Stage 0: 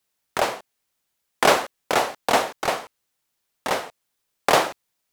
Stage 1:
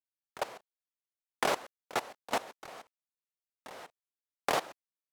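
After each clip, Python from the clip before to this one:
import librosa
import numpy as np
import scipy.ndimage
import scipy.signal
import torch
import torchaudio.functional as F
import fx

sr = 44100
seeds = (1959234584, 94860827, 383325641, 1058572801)

y = fx.level_steps(x, sr, step_db=19)
y = F.gain(torch.from_numpy(y), -9.0).numpy()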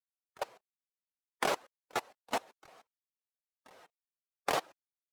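y = fx.bin_expand(x, sr, power=1.5)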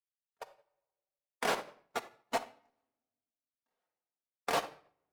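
y = fx.room_shoebox(x, sr, seeds[0], volume_m3=980.0, walls='mixed', distance_m=1.7)
y = fx.upward_expand(y, sr, threshold_db=-48.0, expansion=2.5)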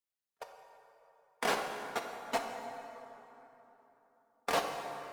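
y = fx.rev_plate(x, sr, seeds[1], rt60_s=3.6, hf_ratio=0.55, predelay_ms=0, drr_db=4.0)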